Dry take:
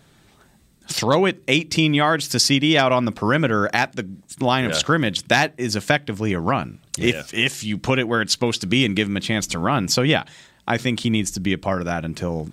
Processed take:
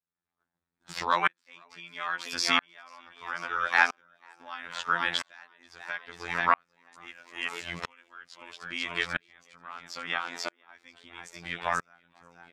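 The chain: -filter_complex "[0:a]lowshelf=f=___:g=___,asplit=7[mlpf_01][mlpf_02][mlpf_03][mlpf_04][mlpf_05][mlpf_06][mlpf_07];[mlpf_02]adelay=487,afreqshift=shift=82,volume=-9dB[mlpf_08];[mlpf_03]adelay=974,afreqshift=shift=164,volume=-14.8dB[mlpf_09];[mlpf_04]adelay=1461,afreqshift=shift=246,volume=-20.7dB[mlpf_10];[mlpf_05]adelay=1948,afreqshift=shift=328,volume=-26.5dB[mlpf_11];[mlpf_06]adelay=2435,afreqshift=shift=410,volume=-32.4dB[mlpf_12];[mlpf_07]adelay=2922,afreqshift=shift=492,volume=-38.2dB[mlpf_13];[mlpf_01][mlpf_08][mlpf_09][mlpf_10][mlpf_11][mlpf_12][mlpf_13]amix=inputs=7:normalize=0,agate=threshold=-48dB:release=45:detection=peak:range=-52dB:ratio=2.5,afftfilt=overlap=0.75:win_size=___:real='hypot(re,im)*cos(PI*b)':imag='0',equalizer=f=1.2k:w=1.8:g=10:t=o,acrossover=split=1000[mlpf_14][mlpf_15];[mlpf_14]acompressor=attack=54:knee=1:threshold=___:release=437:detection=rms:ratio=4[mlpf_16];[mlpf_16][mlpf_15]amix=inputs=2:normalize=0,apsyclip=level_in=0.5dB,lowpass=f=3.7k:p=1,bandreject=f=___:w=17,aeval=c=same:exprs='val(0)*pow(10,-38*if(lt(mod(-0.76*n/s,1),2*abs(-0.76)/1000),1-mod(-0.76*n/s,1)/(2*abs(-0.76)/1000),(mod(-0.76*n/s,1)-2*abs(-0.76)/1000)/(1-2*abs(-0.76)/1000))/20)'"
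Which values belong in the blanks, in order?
62, -6, 2048, -37dB, 2.9k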